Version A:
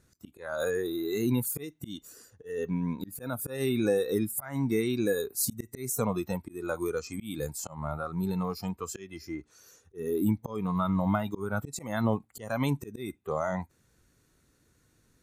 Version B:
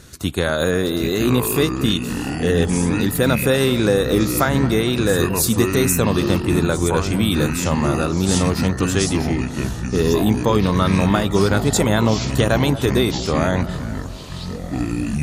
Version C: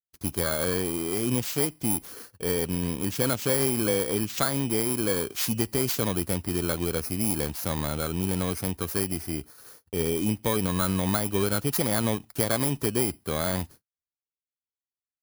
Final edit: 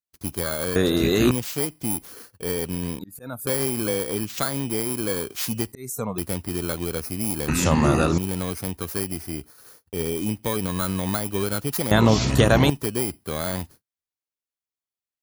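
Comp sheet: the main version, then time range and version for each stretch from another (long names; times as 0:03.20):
C
0:00.76–0:01.31: punch in from B
0:02.99–0:03.47: punch in from A
0:05.72–0:06.18: punch in from A
0:07.48–0:08.18: punch in from B
0:11.91–0:12.70: punch in from B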